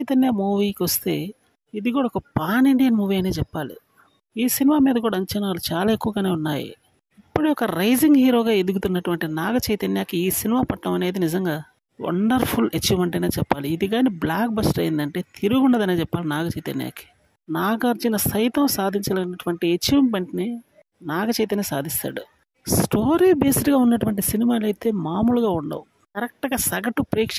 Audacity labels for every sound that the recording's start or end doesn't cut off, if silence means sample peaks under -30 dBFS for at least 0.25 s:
1.740000	3.740000	sound
4.360000	6.720000	sound
7.360000	11.610000	sound
12.000000	17.010000	sound
17.500000	20.570000	sound
21.050000	22.220000	sound
22.670000	25.800000	sound